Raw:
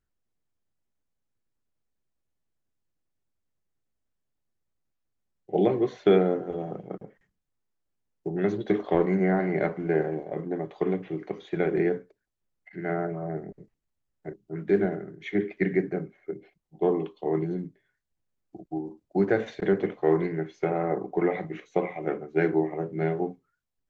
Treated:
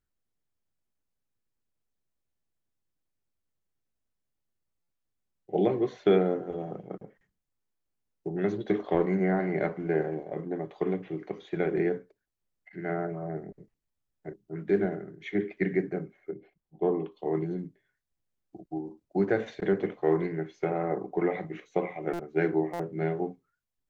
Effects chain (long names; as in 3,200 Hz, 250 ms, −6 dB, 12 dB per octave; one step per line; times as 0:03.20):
0:16.30–0:17.12: high-shelf EQ 3,500 Hz −12 dB
buffer that repeats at 0:04.82/0:22.13/0:22.73, samples 256, times 10
level −2.5 dB